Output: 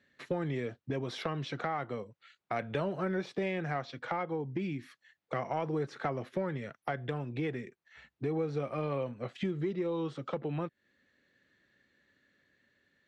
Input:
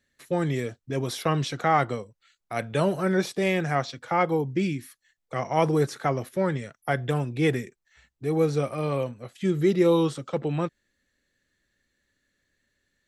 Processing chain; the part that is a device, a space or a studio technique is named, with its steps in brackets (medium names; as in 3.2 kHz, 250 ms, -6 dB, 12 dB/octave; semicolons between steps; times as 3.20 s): AM radio (band-pass 120–3300 Hz; compression 6:1, threshold -36 dBFS, peak gain reduction 18.5 dB; saturation -24.5 dBFS, distortion -26 dB; tremolo 0.34 Hz, depth 19%); trim +5.5 dB